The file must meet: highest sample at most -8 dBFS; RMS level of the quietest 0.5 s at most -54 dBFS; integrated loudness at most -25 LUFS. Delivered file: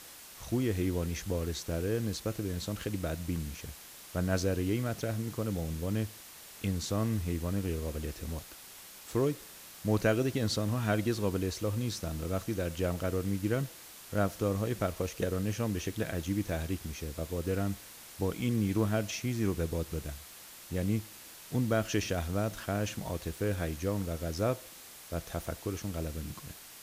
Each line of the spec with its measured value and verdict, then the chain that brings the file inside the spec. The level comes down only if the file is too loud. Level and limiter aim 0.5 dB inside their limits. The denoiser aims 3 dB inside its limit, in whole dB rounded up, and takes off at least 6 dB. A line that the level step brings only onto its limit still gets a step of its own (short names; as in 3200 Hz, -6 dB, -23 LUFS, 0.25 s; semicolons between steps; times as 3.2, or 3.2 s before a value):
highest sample -14.0 dBFS: OK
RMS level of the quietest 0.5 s -50 dBFS: fail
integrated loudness -33.5 LUFS: OK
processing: denoiser 7 dB, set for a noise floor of -50 dBFS